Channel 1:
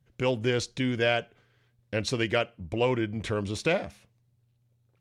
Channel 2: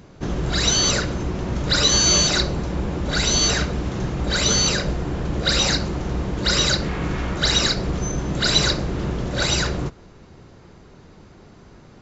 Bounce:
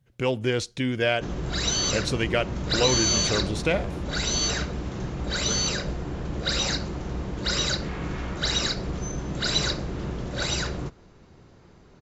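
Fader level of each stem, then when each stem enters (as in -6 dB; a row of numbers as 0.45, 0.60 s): +1.5, -6.5 dB; 0.00, 1.00 s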